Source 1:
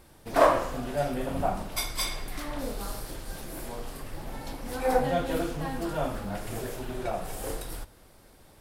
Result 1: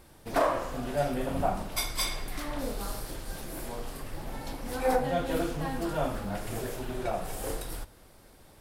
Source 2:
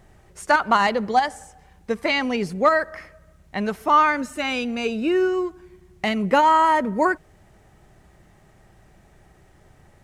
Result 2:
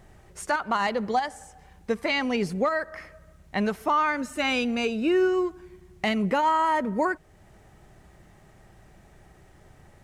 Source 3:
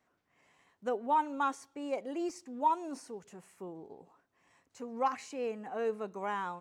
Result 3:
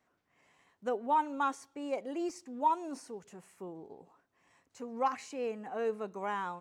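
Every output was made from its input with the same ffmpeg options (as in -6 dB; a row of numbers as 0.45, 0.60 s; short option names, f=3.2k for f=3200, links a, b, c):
-af "alimiter=limit=-15dB:level=0:latency=1:release=462"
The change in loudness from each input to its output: -2.0, -5.0, 0.0 LU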